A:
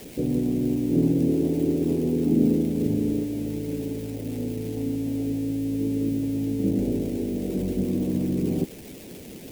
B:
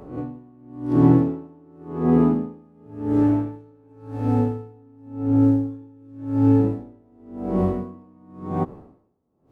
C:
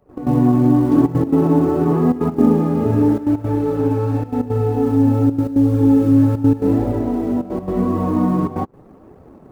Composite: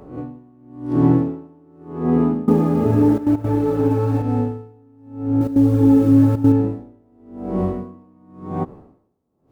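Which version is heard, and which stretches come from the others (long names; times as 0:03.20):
B
0:02.48–0:04.22: punch in from C
0:05.41–0:06.52: punch in from C
not used: A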